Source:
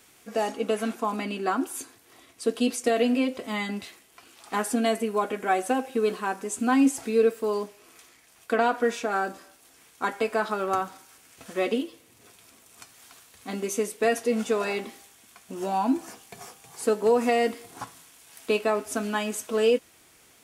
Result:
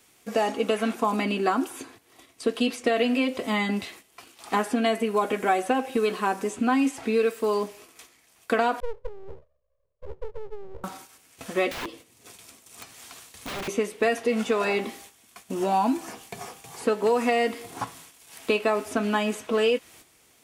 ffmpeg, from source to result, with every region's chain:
ffmpeg -i in.wav -filter_complex "[0:a]asettb=1/sr,asplit=3[link_01][link_02][link_03];[link_01]atrim=end=8.804[link_04];[link_02]atrim=start=8.8:end=10.84,asetpts=PTS-STARTPTS,afade=type=in:duration=0.004:curve=qsin,afade=type=out:start_time=2.036:duration=0.004:curve=qsin,asuperpass=centerf=250:order=20:qfactor=1.7,aeval=exprs='abs(val(0))':channel_layout=same[link_05];[link_03]atrim=start=10.836[link_06];[link_04][link_05]acrossfade=duration=0.004:curve1=hsin:curve2=qsin[link_07];[link_07][link_06]acrossfade=duration=0.004:curve1=qsin:curve2=hsin,asettb=1/sr,asplit=3[link_08][link_09][link_10];[link_08]atrim=end=11.714[link_11];[link_09]atrim=start=11.71:end=13.68,asetpts=PTS-STARTPTS,afade=type=in:duration=0.004:curve=qsin,afade=type=out:start_time=1.966:duration=0.004:curve=qsin,equalizer=frequency=6900:width=0.63:gain=3.5,aeval=exprs='(mod(39.8*val(0)+1,2)-1)/39.8':channel_layout=same[link_12];[link_10]atrim=start=13.676[link_13];[link_11][link_12]acrossfade=duration=0.004:curve1=hsin:curve2=qsin[link_14];[link_14][link_13]acrossfade=duration=0.004:curve1=qsin:curve2=hsin,equalizer=frequency=1500:width_type=o:width=0.38:gain=-3,agate=range=-9dB:threshold=-52dB:ratio=16:detection=peak,acrossover=split=940|3700[link_15][link_16][link_17];[link_15]acompressor=threshold=-29dB:ratio=4[link_18];[link_16]acompressor=threshold=-33dB:ratio=4[link_19];[link_17]acompressor=threshold=-52dB:ratio=4[link_20];[link_18][link_19][link_20]amix=inputs=3:normalize=0,volume=6.5dB" out.wav

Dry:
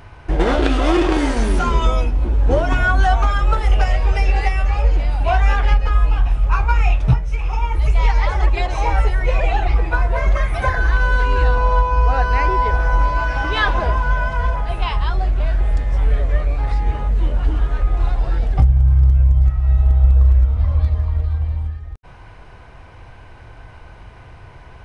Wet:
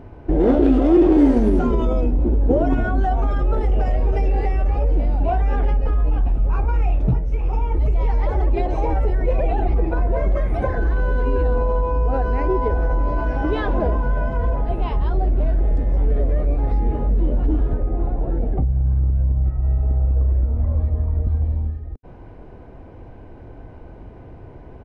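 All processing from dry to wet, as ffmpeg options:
ffmpeg -i in.wav -filter_complex "[0:a]asettb=1/sr,asplit=3[link_01][link_02][link_03];[link_01]atrim=end=17.734[link_04];[link_02]atrim=start=17.73:end=21.27,asetpts=PTS-STARTPTS,afade=type=in:duration=0.004:curve=qsin,afade=type=out:start_time=3.536:duration=0.004:curve=qsin,lowpass=2600,acrossover=split=89|850[link_05][link_06][link_07];[link_05]acompressor=threshold=-19dB:ratio=4[link_08];[link_06]acompressor=threshold=-23dB:ratio=4[link_09];[link_07]acompressor=threshold=-40dB:ratio=4[link_10];[link_08][link_09][link_10]amix=inputs=3:normalize=0[link_11];[link_03]atrim=start=21.266[link_12];[link_04][link_11]acrossfade=duration=0.004:curve1=hsin:curve2=qsin[link_13];[link_13][link_12]acrossfade=duration=0.004:curve1=qsin:curve2=hsin,highshelf=frequency=2500:gain=-10.5,alimiter=limit=-12dB:level=0:latency=1:release=21,firequalizer=gain_entry='entry(120,0);entry(250,10);entry(1100,-7)':delay=0.05:min_phase=1" out.wav

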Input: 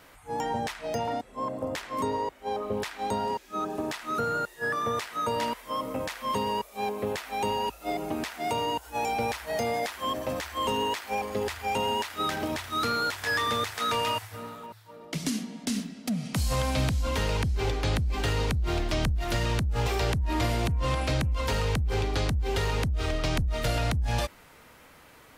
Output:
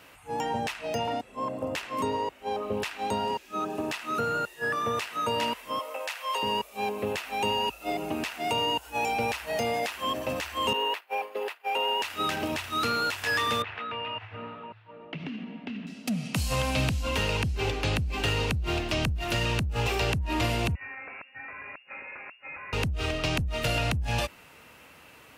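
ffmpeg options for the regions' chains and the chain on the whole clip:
ffmpeg -i in.wav -filter_complex "[0:a]asettb=1/sr,asplit=3[link_01][link_02][link_03];[link_01]atrim=end=5.794[link_04];[link_02]atrim=start=5.79:end=6.43,asetpts=PTS-STARTPTS,afade=type=in:duration=0.004:curve=qsin,afade=type=out:start_time=0.636:duration=0.004:curve=qsin,highpass=frequency=530:width=0.5412,highpass=frequency=530:width=1.3066,bandreject=frequency=1100:width=22[link_05];[link_03]atrim=start=6.426[link_06];[link_04][link_05]acrossfade=duration=0.004:curve1=hsin:curve2=qsin[link_07];[link_07][link_06]acrossfade=duration=0.004:curve1=qsin:curve2=hsin,asettb=1/sr,asplit=3[link_08][link_09][link_10];[link_08]atrim=end=10.734[link_11];[link_09]atrim=start=10.73:end=12.02,asetpts=PTS-STARTPTS,afade=type=in:duration=0.004:curve=qsin,afade=type=out:start_time=1.286:duration=0.004:curve=qsin,highpass=frequency=380:width=0.5412,highpass=frequency=380:width=1.3066,agate=range=-33dB:threshold=-31dB:ratio=3:release=100:detection=peak,equalizer=frequency=6800:width_type=o:width=1.4:gain=-12.5[link_12];[link_10]atrim=start=12.016[link_13];[link_11][link_12]acrossfade=duration=0.004:curve1=hsin:curve2=qsin[link_14];[link_14][link_13]acrossfade=duration=0.004:curve1=qsin:curve2=hsin,asettb=1/sr,asplit=3[link_15][link_16][link_17];[link_15]atrim=end=13.624[link_18];[link_16]atrim=start=13.62:end=15.87,asetpts=PTS-STARTPTS,afade=type=in:duration=0.004:curve=qsin,afade=type=out:start_time=2.246:duration=0.004:curve=qsin,lowpass=frequency=2800:width=0.5412,lowpass=frequency=2800:width=1.3066,acompressor=threshold=-33dB:ratio=5:attack=3.2:release=140:knee=1:detection=peak[link_19];[link_17]atrim=start=15.866[link_20];[link_18][link_19]acrossfade=duration=0.004:curve1=hsin:curve2=qsin[link_21];[link_21][link_20]acrossfade=duration=0.004:curve1=qsin:curve2=hsin,asettb=1/sr,asplit=3[link_22][link_23][link_24];[link_22]atrim=end=20.754[link_25];[link_23]atrim=start=20.75:end=22.73,asetpts=PTS-STARTPTS,afade=type=in:duration=0.004:curve=qsin,afade=type=out:start_time=1.976:duration=0.004:curve=qsin,highpass=860,acompressor=threshold=-38dB:ratio=4:attack=3.2:release=140:knee=1:detection=peak,lowpass=frequency=2500:width_type=q:width=0.5098,lowpass=frequency=2500:width_type=q:width=0.6013,lowpass=frequency=2500:width_type=q:width=0.9,lowpass=frequency=2500:width_type=q:width=2.563,afreqshift=-2900[link_26];[link_24]atrim=start=22.726[link_27];[link_25][link_26]acrossfade=duration=0.004:curve1=hsin:curve2=qsin[link_28];[link_28][link_27]acrossfade=duration=0.004:curve1=qsin:curve2=hsin,highpass=62,equalizer=frequency=2700:width=5.9:gain=10.5" out.wav

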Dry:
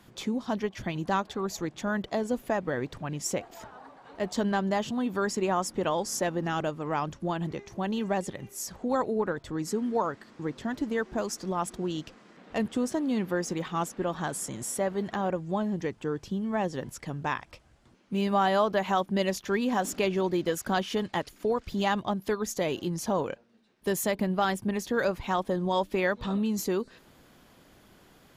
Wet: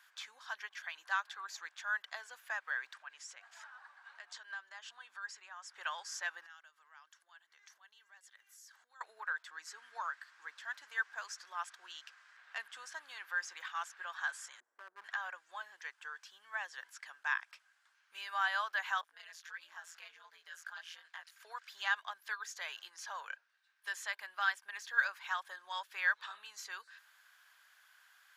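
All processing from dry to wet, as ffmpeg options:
ffmpeg -i in.wav -filter_complex "[0:a]asettb=1/sr,asplit=3[link_01][link_02][link_03];[link_01]atrim=end=2.934[link_04];[link_02]atrim=start=2.93:end=5.76,asetpts=PTS-STARTPTS,afade=type=in:duration=0.004:curve=qsin,afade=type=out:start_time=2.826:duration=0.004:curve=qsin,lowpass=frequency=10000:width=0.5412,lowpass=frequency=10000:width=1.3066,bandreject=frequency=50:width_type=h:width=6,bandreject=frequency=100:width_type=h:width=6,bandreject=frequency=150:width_type=h:width=6,bandreject=frequency=200:width_type=h:width=6,bandreject=frequency=250:width_type=h:width=6,bandreject=frequency=300:width_type=h:width=6,acompressor=threshold=-35dB:ratio=6:attack=3.2:release=140:knee=1:detection=peak[link_05];[link_03]atrim=start=5.756[link_06];[link_04][link_05]acrossfade=duration=0.004:curve1=hsin:curve2=qsin[link_07];[link_07][link_06]acrossfade=duration=0.004:curve1=qsin:curve2=hsin,asettb=1/sr,asplit=3[link_08][link_09][link_10];[link_08]atrim=end=6.464[link_11];[link_09]atrim=start=6.46:end=9.01,asetpts=PTS-STARTPTS,afade=type=in:duration=0.004:curve=qsin,afade=type=out:start_time=2.546:duration=0.004:curve=qsin,equalizer=frequency=710:width_type=o:width=2.8:gain=-7,bandreject=frequency=2500:width=10,acompressor=threshold=-44dB:ratio=12:attack=3.2:release=140:knee=1:detection=peak[link_12];[link_10]atrim=start=9.006[link_13];[link_11][link_12]acrossfade=duration=0.004:curve1=hsin:curve2=qsin[link_14];[link_14][link_13]acrossfade=duration=0.004:curve1=qsin:curve2=hsin,asettb=1/sr,asplit=3[link_15][link_16][link_17];[link_15]atrim=end=14.604[link_18];[link_16]atrim=start=14.6:end=15.04,asetpts=PTS-STARTPTS,afade=type=in:duration=0.004:curve=qsin,afade=type=out:start_time=0.436:duration=0.004:curve=qsin,lowpass=frequency=320:width_type=q:width=2.3,volume=24.5dB,asoftclip=hard,volume=-24.5dB[link_19];[link_17]atrim=start=15.036[link_20];[link_18][link_19]acrossfade=duration=0.004:curve1=hsin:curve2=qsin[link_21];[link_21][link_20]acrossfade=duration=0.004:curve1=qsin:curve2=hsin,asettb=1/sr,asplit=3[link_22][link_23][link_24];[link_22]atrim=end=19.014[link_25];[link_23]atrim=start=19.01:end=21.32,asetpts=PTS-STARTPTS,afade=type=in:duration=0.004:curve=qsin,afade=type=out:start_time=2.306:duration=0.004:curve=qsin,flanger=delay=16.5:depth=5.6:speed=1.4,acompressor=threshold=-35dB:ratio=3:attack=3.2:release=140:knee=1:detection=peak,aeval=exprs='val(0)*sin(2*PI*84*n/s)':channel_layout=same[link_26];[link_24]atrim=start=21.316[link_27];[link_25][link_26]acrossfade=duration=0.004:curve1=hsin:curve2=qsin[link_28];[link_28][link_27]acrossfade=duration=0.004:curve1=qsin:curve2=hsin,acrossover=split=6500[link_29][link_30];[link_30]acompressor=threshold=-56dB:ratio=4:attack=1:release=60[link_31];[link_29][link_31]amix=inputs=2:normalize=0,highpass=frequency=1100:width=0.5412,highpass=frequency=1100:width=1.3066,equalizer=frequency=1600:width_type=o:width=0.27:gain=11,volume=-5.5dB" out.wav

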